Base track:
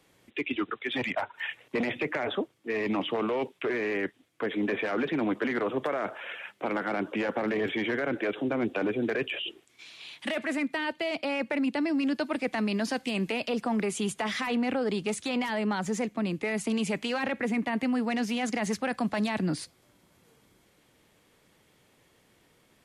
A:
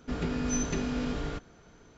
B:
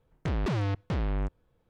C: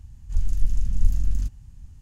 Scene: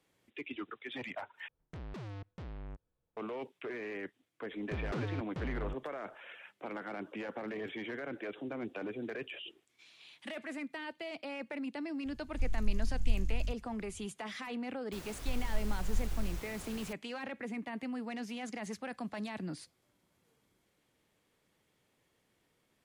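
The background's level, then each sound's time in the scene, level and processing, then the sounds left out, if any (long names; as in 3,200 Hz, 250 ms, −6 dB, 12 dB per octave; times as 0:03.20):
base track −11.5 dB
0:01.48: overwrite with B −15.5 dB
0:04.46: mix in B −9.5 dB
0:12.05: mix in C −10.5 dB
0:14.92: mix in C −13.5 dB + background noise pink −35 dBFS
not used: A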